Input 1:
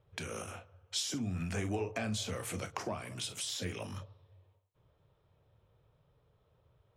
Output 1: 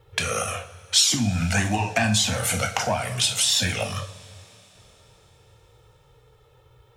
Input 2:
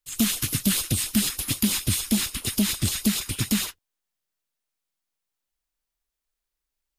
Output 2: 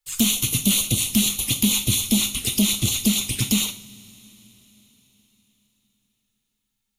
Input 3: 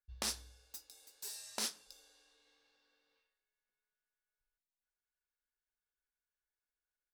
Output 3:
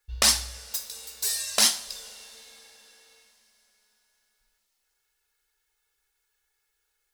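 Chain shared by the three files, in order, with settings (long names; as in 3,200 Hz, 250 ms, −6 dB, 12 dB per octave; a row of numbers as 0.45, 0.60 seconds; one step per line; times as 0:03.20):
tilt shelving filter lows −3 dB, about 860 Hz
flanger swept by the level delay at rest 2.3 ms, full sweep at −23.5 dBFS
coupled-rooms reverb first 0.41 s, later 4.5 s, from −22 dB, DRR 6.5 dB
normalise the peak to −6 dBFS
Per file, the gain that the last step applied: +17.5, +4.0, +18.0 decibels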